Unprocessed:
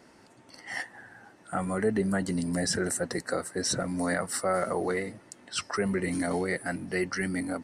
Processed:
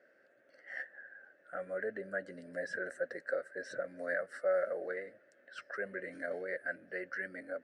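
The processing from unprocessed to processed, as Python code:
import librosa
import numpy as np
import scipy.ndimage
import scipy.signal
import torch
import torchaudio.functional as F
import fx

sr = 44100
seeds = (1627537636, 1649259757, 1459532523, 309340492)

y = fx.double_bandpass(x, sr, hz=950.0, octaves=1.5)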